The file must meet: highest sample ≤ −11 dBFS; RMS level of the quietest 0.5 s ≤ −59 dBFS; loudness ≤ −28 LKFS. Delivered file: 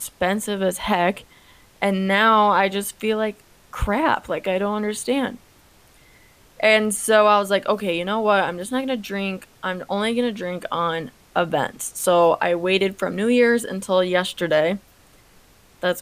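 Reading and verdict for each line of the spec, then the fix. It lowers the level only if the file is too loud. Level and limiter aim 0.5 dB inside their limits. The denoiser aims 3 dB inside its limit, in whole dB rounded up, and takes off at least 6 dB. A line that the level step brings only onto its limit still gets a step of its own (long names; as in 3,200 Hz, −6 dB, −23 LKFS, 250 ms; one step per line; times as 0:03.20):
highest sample −4.5 dBFS: out of spec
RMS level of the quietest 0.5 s −53 dBFS: out of spec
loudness −21.0 LKFS: out of spec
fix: level −7.5 dB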